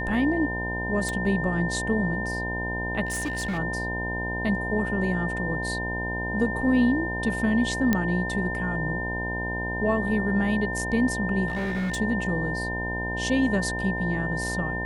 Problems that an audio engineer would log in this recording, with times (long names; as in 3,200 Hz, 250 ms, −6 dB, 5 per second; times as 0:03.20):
mains buzz 60 Hz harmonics 17 −32 dBFS
whistle 1,800 Hz −30 dBFS
0:01.09: click −16 dBFS
0:03.05–0:03.59: clipping −25 dBFS
0:07.93: click −9 dBFS
0:11.47–0:11.98: clipping −24.5 dBFS